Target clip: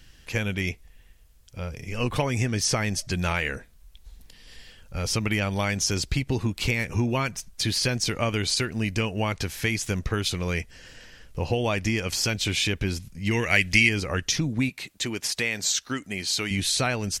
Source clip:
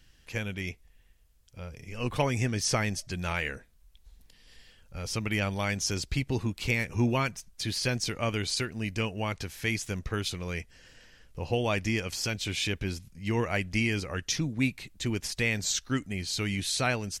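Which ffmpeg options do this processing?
-filter_complex "[0:a]acompressor=threshold=-29dB:ratio=6,asettb=1/sr,asplit=3[a][b][c];[a]atrim=end=13.314[d];[b]atrim=start=13.31:end=13.89,asetpts=PTS-STARTPTS,afade=t=in:d=0.004:c=qsin,afade=t=out:st=0.576:d=0.004:c=qsin,highshelf=f=1.5k:t=q:w=1.5:g=8[e];[c]atrim=start=13.886[f];[d][e]acrossfade=d=0.004:c1=hsin:c2=qsin[g];[g][f]acrossfade=d=0.004:c1=qsin:c2=hsin,asettb=1/sr,asplit=3[h][i][j];[h]atrim=end=14.694[k];[i]atrim=start=14.69:end=16.51,asetpts=PTS-STARTPTS,afade=t=in:d=0.004:c=qsin,afade=t=out:st=1.816:d=0.004:c=qsin,highpass=f=370:p=1[l];[j]atrim=start=16.506[m];[k][l]acrossfade=d=0.004:c1=hsin:c2=qsin[n];[n][m]acrossfade=d=0.004:c1=qsin:c2=hsin,volume=8dB"

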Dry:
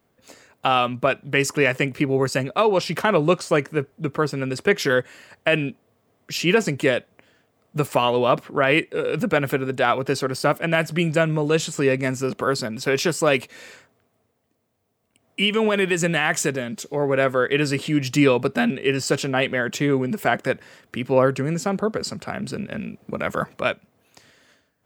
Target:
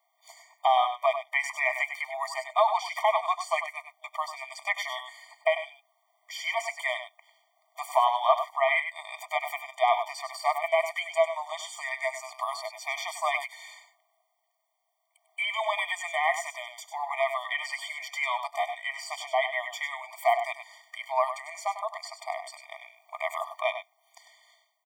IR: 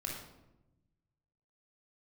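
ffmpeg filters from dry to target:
-filter_complex "[0:a]acrossover=split=2800[a][b];[b]acompressor=threshold=-36dB:ratio=4:attack=1:release=60[c];[a][c]amix=inputs=2:normalize=0,aecho=1:1:92|99:0.119|0.335,afftfilt=real='re*eq(mod(floor(b*sr/1024/610),2),1)':imag='im*eq(mod(floor(b*sr/1024/610),2),1)':win_size=1024:overlap=0.75"

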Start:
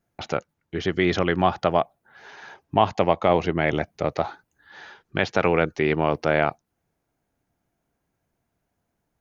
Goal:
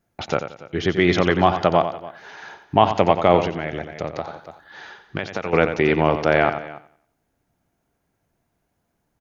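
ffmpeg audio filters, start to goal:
-filter_complex "[0:a]asplit=2[a][b];[b]aecho=0:1:89|287:0.15|0.112[c];[a][c]amix=inputs=2:normalize=0,asettb=1/sr,asplit=3[d][e][f];[d]atrim=end=3.464[g];[e]atrim=start=3.46:end=5.53,asetpts=PTS-STARTPTS,afade=t=in:d=0.004:c=qsin,afade=t=out:st=2.066:d=0.004:c=qsin,acompressor=threshold=-27dB:ratio=6[h];[f]atrim=start=5.526[i];[g][h]acrossfade=d=0.004:c1=hsin:c2=qsin[j];[j][i]acrossfade=d=0.004:c1=qsin:c2=hsin,asplit=2[k][l];[l]aecho=0:1:89|178|267|356:0.178|0.0694|0.027|0.0105[m];[k][m]amix=inputs=2:normalize=0,volume=3.5dB"

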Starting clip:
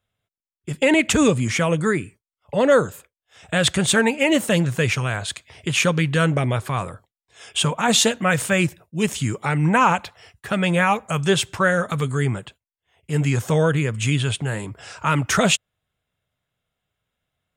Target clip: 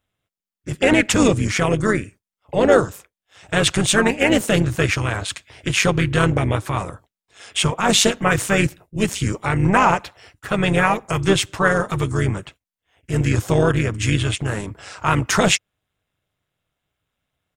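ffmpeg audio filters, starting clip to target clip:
-filter_complex "[0:a]asplit=3[a][b][c];[b]asetrate=29433,aresample=44100,atempo=1.49831,volume=-15dB[d];[c]asetrate=35002,aresample=44100,atempo=1.25992,volume=-8dB[e];[a][d][e]amix=inputs=3:normalize=0,tremolo=f=200:d=0.621,volume=3.5dB"

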